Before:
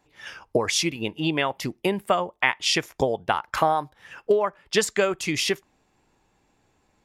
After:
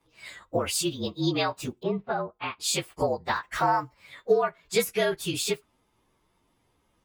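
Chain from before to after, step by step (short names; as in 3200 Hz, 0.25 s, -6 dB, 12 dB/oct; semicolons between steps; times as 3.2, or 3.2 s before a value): inharmonic rescaling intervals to 112%; 1.83–2.6 tape spacing loss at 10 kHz 38 dB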